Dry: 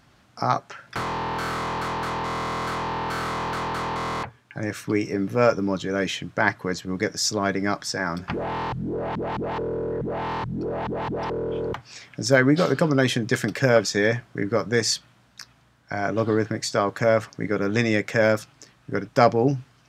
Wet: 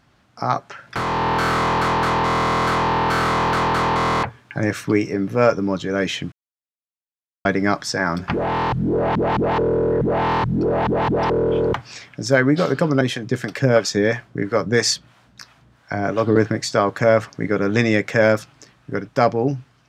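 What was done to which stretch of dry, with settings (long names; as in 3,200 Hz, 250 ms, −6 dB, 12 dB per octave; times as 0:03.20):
0:06.32–0:07.45: silence
0:13.01–0:16.36: two-band tremolo in antiphase 3 Hz, crossover 500 Hz
whole clip: high-shelf EQ 5,600 Hz −5 dB; automatic gain control gain up to 10 dB; level −1 dB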